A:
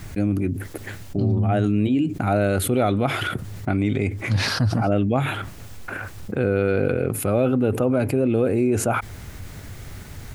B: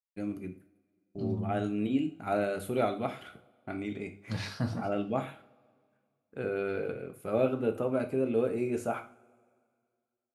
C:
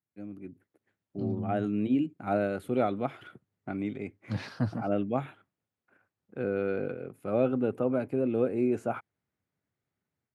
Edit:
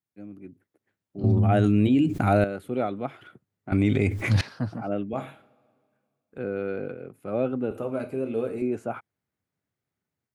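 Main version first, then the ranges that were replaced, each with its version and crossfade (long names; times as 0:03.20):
C
0:01.24–0:02.44: punch in from A
0:03.72–0:04.41: punch in from A
0:05.13–0:06.38: punch in from B
0:07.71–0:08.62: punch in from B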